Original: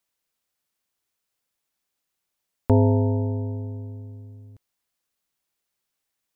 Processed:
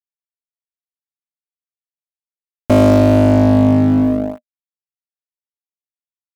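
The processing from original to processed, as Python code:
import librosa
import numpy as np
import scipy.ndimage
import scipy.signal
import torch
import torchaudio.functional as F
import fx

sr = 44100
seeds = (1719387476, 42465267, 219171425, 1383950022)

y = fx.fuzz(x, sr, gain_db=35.0, gate_db=-38.0)
y = fx.leveller(y, sr, passes=3)
y = fx.small_body(y, sr, hz=(240.0, 610.0), ring_ms=55, db=18)
y = y * librosa.db_to_amplitude(-4.0)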